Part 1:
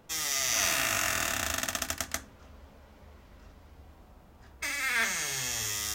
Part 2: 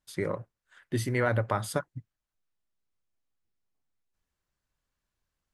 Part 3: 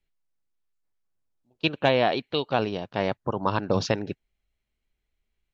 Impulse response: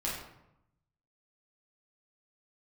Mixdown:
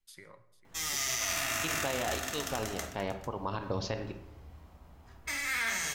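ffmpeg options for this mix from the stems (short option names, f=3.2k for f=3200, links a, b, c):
-filter_complex "[0:a]adelay=650,volume=-5dB,asplit=3[a][b][c];[b]volume=-7dB[d];[c]volume=-16.5dB[e];[1:a]tiltshelf=f=1.1k:g=-8.5,acompressor=threshold=-35dB:ratio=6,volume=-14.5dB,asplit=3[f][g][h];[g]volume=-13.5dB[i];[h]volume=-16dB[j];[2:a]asubboost=boost=7:cutoff=56,volume=-9.5dB,asplit=2[k][l];[l]volume=-9.5dB[m];[3:a]atrim=start_sample=2205[n];[d][i][m]amix=inputs=3:normalize=0[o];[o][n]afir=irnorm=-1:irlink=0[p];[e][j]amix=inputs=2:normalize=0,aecho=0:1:447:1[q];[a][f][k][p][q]amix=inputs=5:normalize=0,alimiter=limit=-21.5dB:level=0:latency=1:release=57"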